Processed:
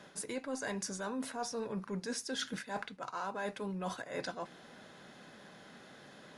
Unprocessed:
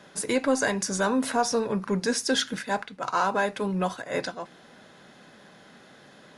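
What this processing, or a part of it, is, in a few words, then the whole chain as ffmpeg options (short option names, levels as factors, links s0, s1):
compression on the reversed sound: -af "areverse,acompressor=threshold=0.0224:ratio=6,areverse,volume=0.708"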